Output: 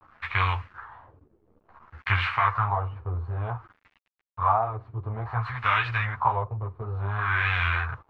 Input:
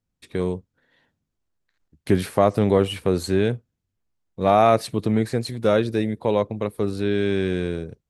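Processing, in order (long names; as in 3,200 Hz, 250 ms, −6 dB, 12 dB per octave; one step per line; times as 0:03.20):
compressor on every frequency bin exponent 0.6
pitch vibrato 3.1 Hz 54 cents
drawn EQ curve 120 Hz 0 dB, 180 Hz −29 dB, 300 Hz −29 dB, 570 Hz −23 dB, 1,000 Hz +6 dB, 6,400 Hz −1 dB, 13,000 Hz −8 dB
speech leveller within 4 dB 0.5 s
high-shelf EQ 10,000 Hz −7 dB
bit reduction 8 bits
auto-filter low-pass sine 0.56 Hz 370–2,500 Hz
string-ensemble chorus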